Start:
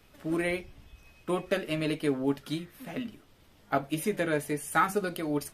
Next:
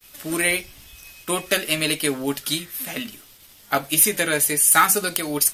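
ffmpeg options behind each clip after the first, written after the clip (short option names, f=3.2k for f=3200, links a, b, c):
-af "agate=range=-33dB:threshold=-56dB:ratio=3:detection=peak,crystalizer=i=10:c=0,aeval=exprs='0.447*(abs(mod(val(0)/0.447+3,4)-2)-1)':c=same,volume=2dB"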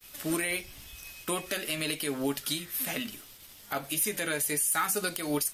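-af "alimiter=limit=-16.5dB:level=0:latency=1:release=180,volume=-2dB"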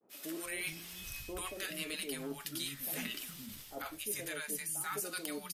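-filter_complex "[0:a]areverse,acompressor=threshold=-37dB:ratio=6,areverse,acrossover=split=210|750[a][b][c];[c]adelay=90[d];[a]adelay=420[e];[e][b][d]amix=inputs=3:normalize=0,volume=1dB"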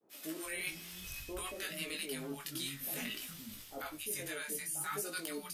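-af "flanger=delay=18:depth=4.3:speed=0.56,volume=2.5dB"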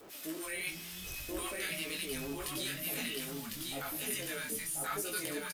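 -filter_complex "[0:a]aeval=exprs='val(0)+0.5*0.00376*sgn(val(0))':c=same,asplit=2[a][b];[b]aecho=0:1:1053:0.708[c];[a][c]amix=inputs=2:normalize=0"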